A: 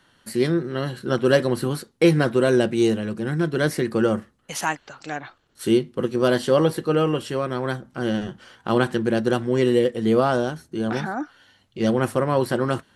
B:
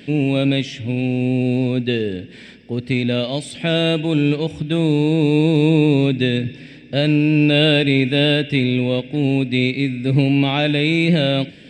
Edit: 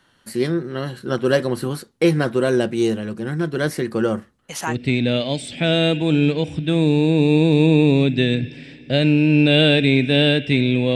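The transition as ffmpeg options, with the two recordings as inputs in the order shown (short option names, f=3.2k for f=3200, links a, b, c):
-filter_complex "[0:a]apad=whole_dur=10.95,atrim=end=10.95,atrim=end=4.85,asetpts=PTS-STARTPTS[a];[1:a]atrim=start=2.58:end=8.98,asetpts=PTS-STARTPTS[b];[a][b]acrossfade=d=0.3:c1=qsin:c2=qsin"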